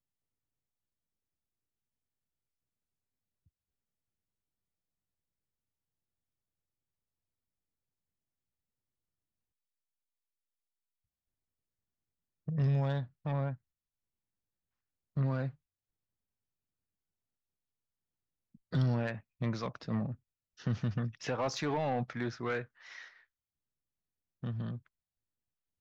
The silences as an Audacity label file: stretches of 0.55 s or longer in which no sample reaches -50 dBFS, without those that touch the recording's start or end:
13.550000	15.170000	silence
15.510000	18.550000	silence
23.090000	24.430000	silence